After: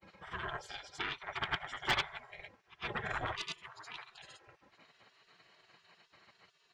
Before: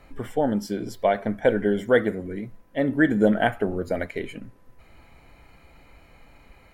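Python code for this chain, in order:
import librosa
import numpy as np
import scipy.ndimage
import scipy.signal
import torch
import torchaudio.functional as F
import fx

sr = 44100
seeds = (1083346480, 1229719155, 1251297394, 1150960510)

y = scipy.signal.sosfilt(scipy.signal.butter(4, 6000.0, 'lowpass', fs=sr, output='sos'), x)
y = fx.granulator(y, sr, seeds[0], grain_ms=100.0, per_s=20.0, spray_ms=100.0, spread_st=0)
y = y + 0.88 * np.pad(y, (int(3.7 * sr / 1000.0), 0))[:len(y)]
y = fx.cheby_harmonics(y, sr, harmonics=(4, 8), levels_db=(-21, -28), full_scale_db=-4.0)
y = fx.spec_gate(y, sr, threshold_db=-25, keep='weak')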